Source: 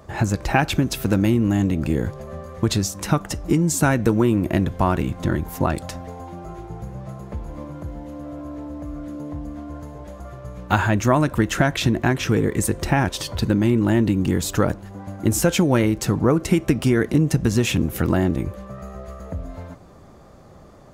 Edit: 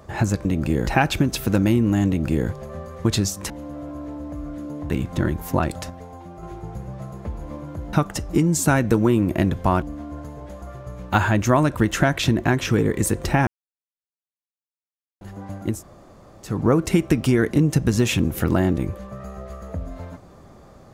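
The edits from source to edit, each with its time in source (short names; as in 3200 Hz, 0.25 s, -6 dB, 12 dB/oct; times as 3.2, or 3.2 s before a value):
1.65–2.07 copy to 0.45
3.08–4.97 swap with 8–9.4
5.97–6.5 gain -4 dB
13.05–14.79 mute
15.29–16.1 room tone, crossfade 0.24 s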